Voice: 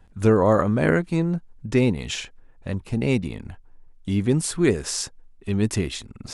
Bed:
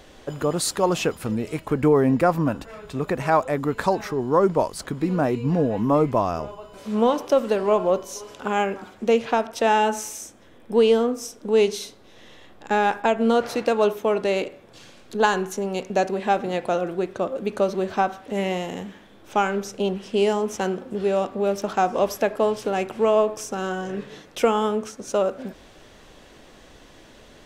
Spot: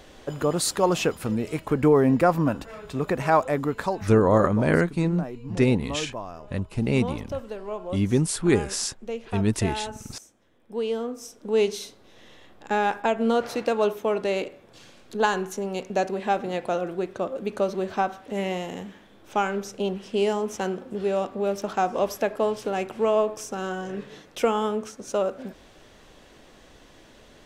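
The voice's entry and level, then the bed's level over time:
3.85 s, -1.0 dB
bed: 3.59 s -0.5 dB
4.39 s -13.5 dB
10.56 s -13.5 dB
11.62 s -3 dB

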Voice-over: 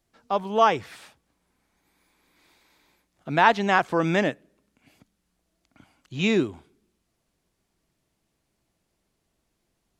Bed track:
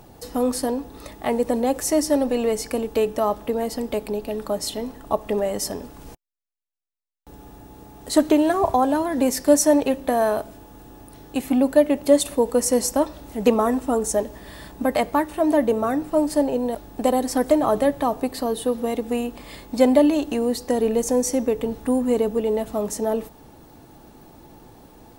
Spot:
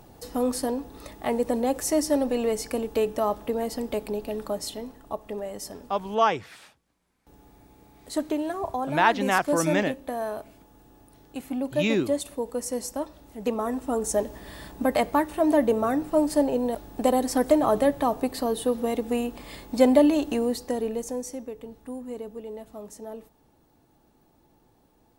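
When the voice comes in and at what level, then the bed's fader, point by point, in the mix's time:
5.60 s, -2.5 dB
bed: 4.39 s -3.5 dB
5.19 s -10.5 dB
13.42 s -10.5 dB
14.24 s -2 dB
20.36 s -2 dB
21.51 s -15.5 dB

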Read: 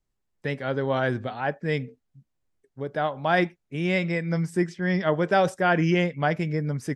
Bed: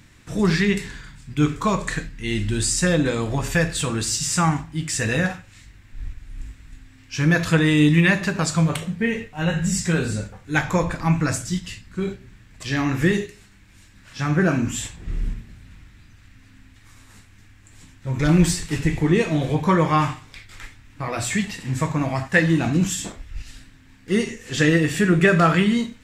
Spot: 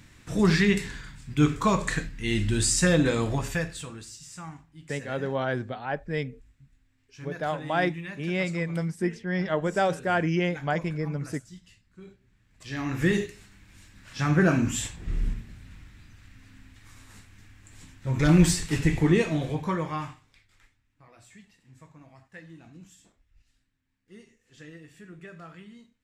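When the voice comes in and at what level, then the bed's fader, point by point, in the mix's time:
4.45 s, -3.5 dB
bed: 3.27 s -2 dB
4.16 s -21.5 dB
12.14 s -21.5 dB
13.22 s -2 dB
19.06 s -2 dB
21.17 s -29 dB

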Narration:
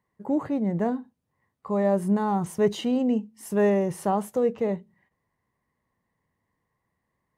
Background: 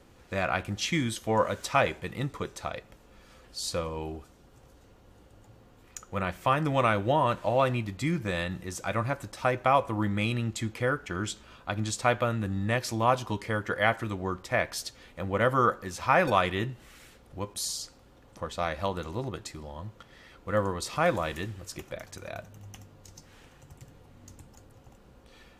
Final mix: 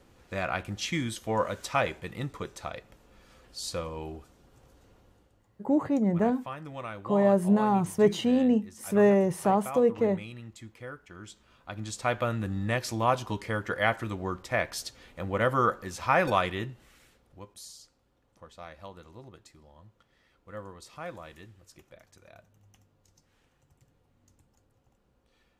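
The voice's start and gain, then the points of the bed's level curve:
5.40 s, +0.5 dB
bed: 5 s -2.5 dB
5.49 s -14 dB
11.18 s -14 dB
12.28 s -1 dB
16.34 s -1 dB
17.75 s -14.5 dB

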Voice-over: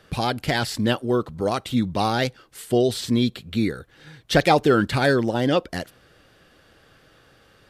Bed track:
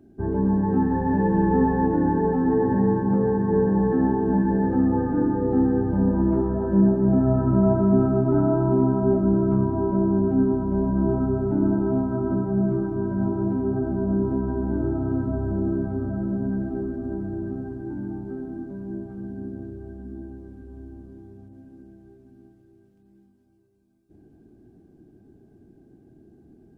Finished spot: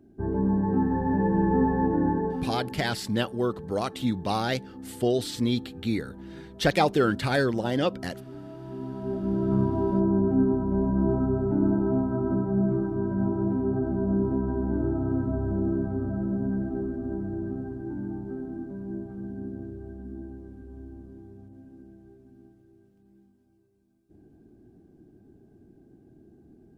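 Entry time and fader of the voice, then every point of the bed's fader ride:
2.30 s, -5.0 dB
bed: 2.1 s -3 dB
2.97 s -22 dB
8.51 s -22 dB
9.59 s -2 dB

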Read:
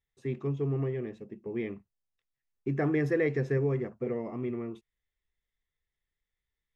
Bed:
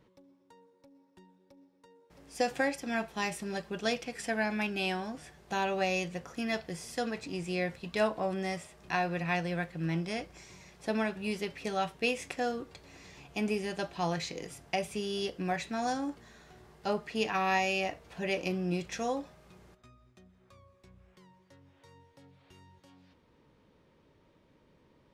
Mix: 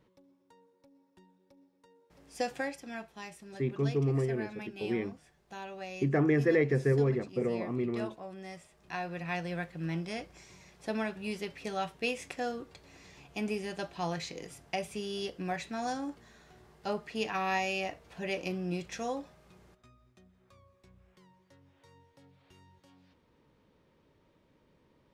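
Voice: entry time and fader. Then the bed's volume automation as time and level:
3.35 s, +1.5 dB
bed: 2.41 s -3 dB
3.26 s -12 dB
8.27 s -12 dB
9.53 s -2.5 dB

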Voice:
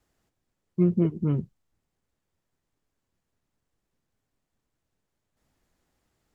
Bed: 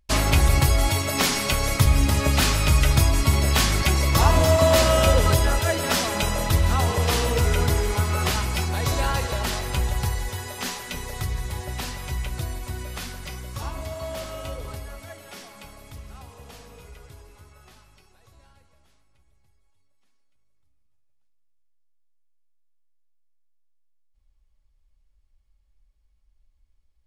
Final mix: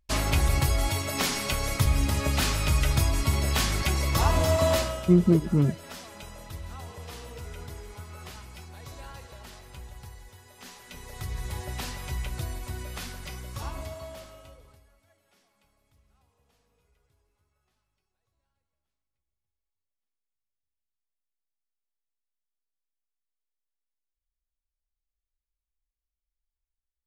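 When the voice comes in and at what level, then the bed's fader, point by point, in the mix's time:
4.30 s, +3.0 dB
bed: 4.72 s -5.5 dB
5.06 s -19.5 dB
10.44 s -19.5 dB
11.49 s -3.5 dB
13.81 s -3.5 dB
14.93 s -25 dB

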